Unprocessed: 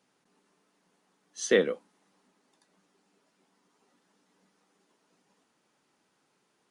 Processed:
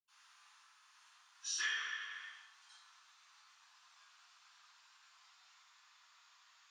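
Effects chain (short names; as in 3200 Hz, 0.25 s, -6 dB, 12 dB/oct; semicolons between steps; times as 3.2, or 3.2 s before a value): gliding pitch shift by -5.5 st starting unshifted; inverse Chebyshev high-pass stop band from 550 Hz, stop band 40 dB; reverb RT60 1.0 s, pre-delay 76 ms; compressor 2.5:1, threshold -52 dBFS, peak gain reduction 16 dB; gain +9 dB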